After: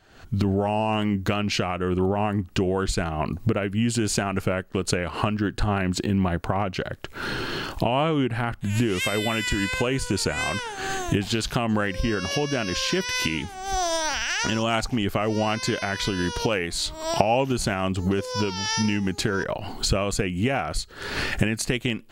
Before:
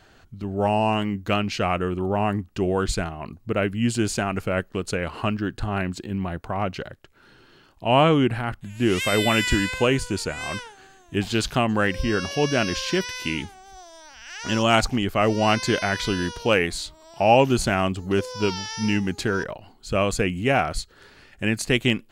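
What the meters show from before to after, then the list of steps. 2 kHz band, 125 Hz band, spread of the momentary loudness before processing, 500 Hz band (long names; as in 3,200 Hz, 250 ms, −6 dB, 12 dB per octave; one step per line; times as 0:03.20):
−1.5 dB, +0.5 dB, 11 LU, −2.5 dB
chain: camcorder AGC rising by 60 dB per second
level −6 dB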